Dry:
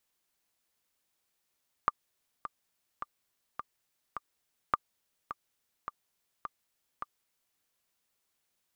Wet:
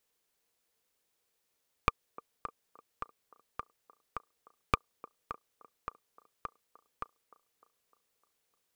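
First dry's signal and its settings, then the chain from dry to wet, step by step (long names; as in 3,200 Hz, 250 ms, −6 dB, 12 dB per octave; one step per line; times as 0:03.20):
click track 105 BPM, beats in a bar 5, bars 2, 1,190 Hz, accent 12 dB −11.5 dBFS
stylus tracing distortion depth 0.17 ms
parametric band 460 Hz +9 dB 0.36 octaves
delay with a band-pass on its return 303 ms, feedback 55%, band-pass 550 Hz, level −16.5 dB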